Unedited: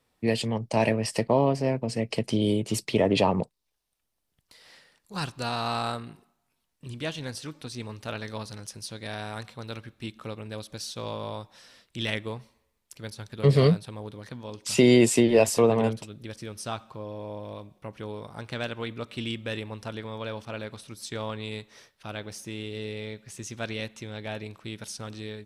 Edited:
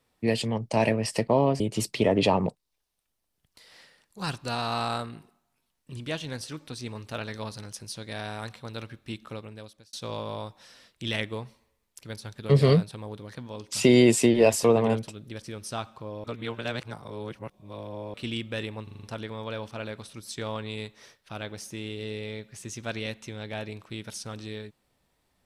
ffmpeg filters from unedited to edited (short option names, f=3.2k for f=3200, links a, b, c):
-filter_complex "[0:a]asplit=10[a][b][c][d][e][f][g][h][i][j];[a]atrim=end=1.602[k];[b]atrim=start=2.538:end=10.87,asetpts=PTS-STARTPTS,afade=t=out:st=7.642:d=0.69[l];[c]atrim=start=10.87:end=17.182,asetpts=PTS-STARTPTS,afade=t=in:d=0.004:c=hsin[m];[d]atrim=start=17.178:end=19.082,asetpts=PTS-STARTPTS,areverse[n];[e]atrim=start=19.078:end=19.812[o];[f]atrim=start=19.768:end=19.812[p];[g]atrim=start=19.768:end=19.812[q];[h]atrim=start=19.768:end=19.812[r];[i]atrim=start=19.768:end=19.812[s];[j]atrim=start=19.768[t];[l][m]concat=n=2:v=0:a=1[u];[k][u]acrossfade=d=0.004:c1=hsin:c2=hsin[v];[v][n]acrossfade=d=0.004:c1=hsin:c2=hsin[w];[w][o]acrossfade=d=0.004:c1=hsin:c2=hsin[x];[x][p]acrossfade=d=0.004:c1=hsin:c2=hsin[y];[y][q]acrossfade=d=0.004:c1=hsin:c2=hsin[z];[z][r]acrossfade=d=0.004:c1=hsin:c2=hsin[aa];[aa][s]acrossfade=d=0.004:c1=hsin:c2=hsin[ab];[ab][t]acrossfade=d=0.004:c1=hsin:c2=hsin"